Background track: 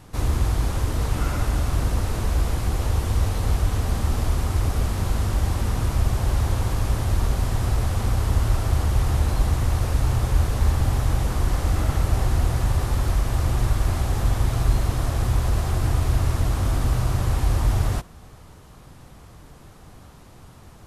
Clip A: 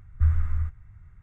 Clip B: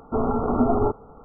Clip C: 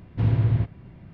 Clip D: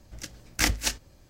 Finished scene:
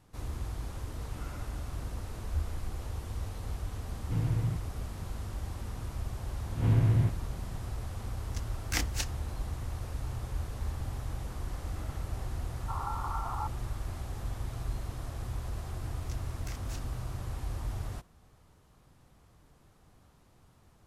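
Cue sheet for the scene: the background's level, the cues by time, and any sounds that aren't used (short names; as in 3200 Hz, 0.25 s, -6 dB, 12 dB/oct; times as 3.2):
background track -15.5 dB
2.12 add A -13.5 dB
3.92 add C -10.5 dB + comb 6.5 ms
6.45 add C -4.5 dB + spectral swells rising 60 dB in 0.39 s
8.13 add D -8 dB
12.56 add B -4.5 dB + elliptic high-pass 870 Hz
15.88 add D -8 dB + compressor, threshold -37 dBFS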